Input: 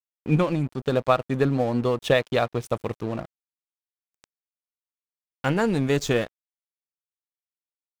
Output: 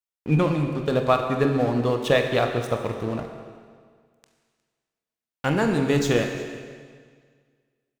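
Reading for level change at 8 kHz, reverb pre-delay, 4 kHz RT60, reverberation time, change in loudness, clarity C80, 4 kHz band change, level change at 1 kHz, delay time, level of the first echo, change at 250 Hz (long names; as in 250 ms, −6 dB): +1.5 dB, 22 ms, 1.7 s, 1.8 s, +1.0 dB, 7.0 dB, +1.5 dB, +1.5 dB, 359 ms, −21.5 dB, +1.5 dB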